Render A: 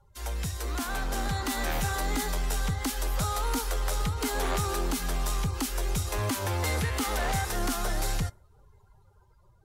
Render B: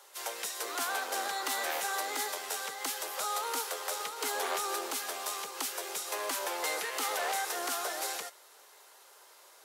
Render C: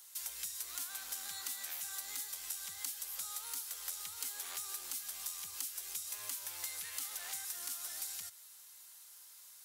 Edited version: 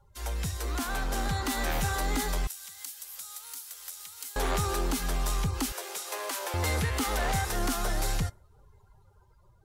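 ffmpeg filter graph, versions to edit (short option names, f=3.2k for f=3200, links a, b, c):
-filter_complex "[0:a]asplit=3[a][b][c];[a]atrim=end=2.472[d];[2:a]atrim=start=2.468:end=4.362[e];[b]atrim=start=4.358:end=5.722[f];[1:a]atrim=start=5.718:end=6.542[g];[c]atrim=start=6.538[h];[d][e]acrossfade=d=0.004:c1=hsin:c2=hsin[i];[i][f]acrossfade=d=0.004:c1=hsin:c2=hsin[j];[j][g]acrossfade=d=0.004:c1=hsin:c2=hsin[k];[k][h]acrossfade=d=0.004:c1=hsin:c2=hsin"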